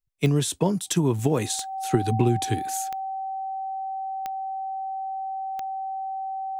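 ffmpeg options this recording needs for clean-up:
-af "adeclick=t=4,bandreject=f=770:w=30"

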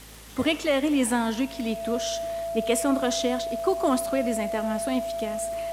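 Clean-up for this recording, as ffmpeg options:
-af "adeclick=t=4,bandreject=f=54.2:t=h:w=4,bandreject=f=108.4:t=h:w=4,bandreject=f=162.6:t=h:w=4,bandreject=f=216.8:t=h:w=4,bandreject=f=670:w=30,afwtdn=0.004"

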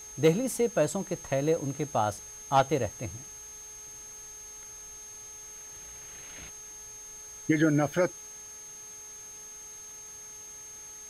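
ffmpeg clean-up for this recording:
-af "adeclick=t=4,bandreject=f=425.7:t=h:w=4,bandreject=f=851.4:t=h:w=4,bandreject=f=1.2771k:t=h:w=4,bandreject=f=1.7028k:t=h:w=4,bandreject=f=2.1285k:t=h:w=4,bandreject=f=6.4k:w=30,afwtdn=0.0022"

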